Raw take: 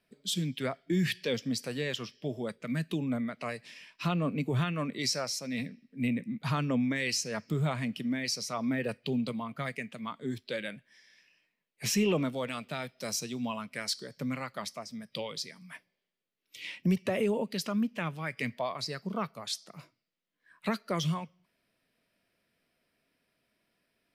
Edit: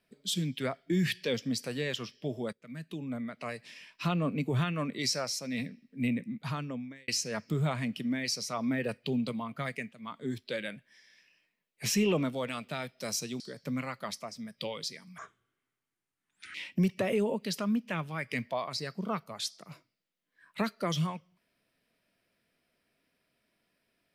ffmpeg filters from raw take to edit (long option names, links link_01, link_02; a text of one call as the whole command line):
ffmpeg -i in.wav -filter_complex "[0:a]asplit=7[link_01][link_02][link_03][link_04][link_05][link_06][link_07];[link_01]atrim=end=2.53,asetpts=PTS-STARTPTS,afade=type=out:start_time=2.526:duration=0.004:curve=hsin:silence=0.141254[link_08];[link_02]atrim=start=2.53:end=7.08,asetpts=PTS-STARTPTS,afade=type=in:duration=1.21:silence=0.141254,afade=type=out:start_time=3.6:duration=0.95[link_09];[link_03]atrim=start=7.08:end=9.92,asetpts=PTS-STARTPTS,afade=type=in:duration=0.004:curve=hsin,afade=type=out:start_time=2.836:duration=0.004:curve=hsin:silence=0.199526[link_10];[link_04]atrim=start=9.92:end=13.402,asetpts=PTS-STARTPTS,afade=type=in:duration=0.27:silence=0.199526[link_11];[link_05]atrim=start=13.938:end=15.724[link_12];[link_06]atrim=start=15.72:end=16.62,asetpts=PTS-STARTPTS,asetrate=29106,aresample=44100,atrim=end_sample=60136,asetpts=PTS-STARTPTS[link_13];[link_07]atrim=start=16.616[link_14];[link_08][link_09][link_10][link_11]concat=n=4:v=0:a=1[link_15];[link_15][link_12]acrossfade=duration=0.004:curve1=hsin:curve2=hsin[link_16];[link_16][link_13]acrossfade=duration=0.004:curve1=hsin:curve2=hsin[link_17];[link_17][link_14]acrossfade=duration=0.004:curve1=hsin:curve2=hsin" out.wav